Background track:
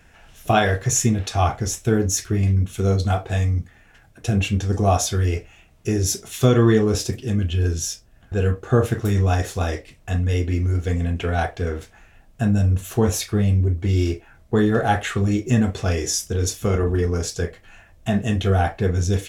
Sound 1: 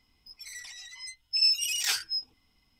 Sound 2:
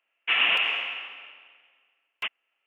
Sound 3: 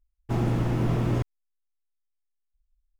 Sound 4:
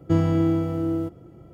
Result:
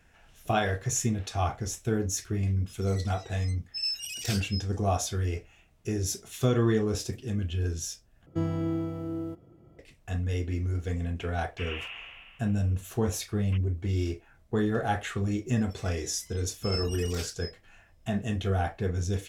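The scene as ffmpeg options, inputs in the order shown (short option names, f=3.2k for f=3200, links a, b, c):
-filter_complex "[1:a]asplit=2[a][b];[0:a]volume=-9dB,asplit=2[c][d];[c]atrim=end=8.264[e];[4:a]atrim=end=1.53,asetpts=PTS-STARTPTS,volume=-9dB[f];[d]atrim=start=9.786[g];[a]atrim=end=2.79,asetpts=PTS-STARTPTS,volume=-7.5dB,afade=t=in:d=0.004:c=hsin,afade=t=out:st=2.786:d=0.004:c=hsin,adelay=2410[h];[2:a]atrim=end=2.66,asetpts=PTS-STARTPTS,volume=-16.5dB,afade=t=in:d=0.004:c=hsin,afade=t=out:st=2.656:d=0.004:c=hsin,adelay=498330S[i];[b]atrim=end=2.79,asetpts=PTS-STARTPTS,volume=-12.5dB,afade=t=in:d=0.004:c=hsin,afade=t=out:st=2.786:d=0.004:c=hsin,adelay=15300[j];[e][f]acrossfade=d=0.004:c1=hsin:c2=hsin[k];[k][g]acrossfade=d=0.004:c1=hsin:c2=hsin[l];[l][h][i][j]amix=inputs=4:normalize=0"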